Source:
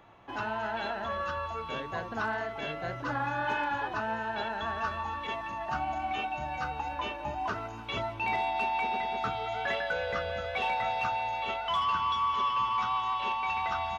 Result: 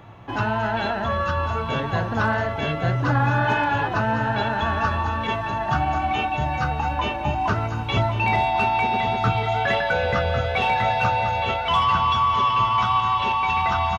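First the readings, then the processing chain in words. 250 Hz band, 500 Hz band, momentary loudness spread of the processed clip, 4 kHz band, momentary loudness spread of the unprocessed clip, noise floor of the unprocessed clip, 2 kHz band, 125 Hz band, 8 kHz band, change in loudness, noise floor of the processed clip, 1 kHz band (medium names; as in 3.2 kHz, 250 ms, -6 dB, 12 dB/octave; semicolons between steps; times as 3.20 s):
+13.5 dB, +10.0 dB, 5 LU, +9.0 dB, 7 LU, -41 dBFS, +9.0 dB, +20.0 dB, no reading, +10.0 dB, -28 dBFS, +9.0 dB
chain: peaking EQ 110 Hz +12.5 dB 1.7 oct; delay 1101 ms -10 dB; trim +8.5 dB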